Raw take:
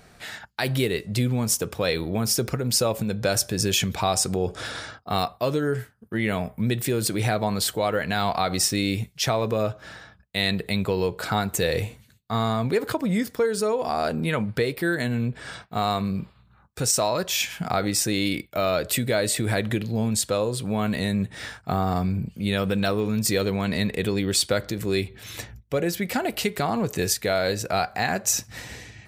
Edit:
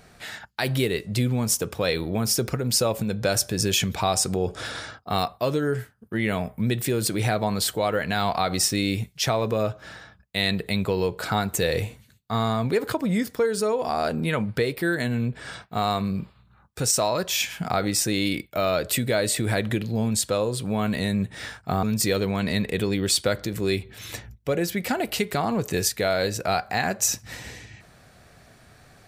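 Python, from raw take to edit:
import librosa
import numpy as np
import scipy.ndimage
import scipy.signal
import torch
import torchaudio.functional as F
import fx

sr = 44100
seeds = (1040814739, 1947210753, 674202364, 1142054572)

y = fx.edit(x, sr, fx.cut(start_s=21.83, length_s=1.25), tone=tone)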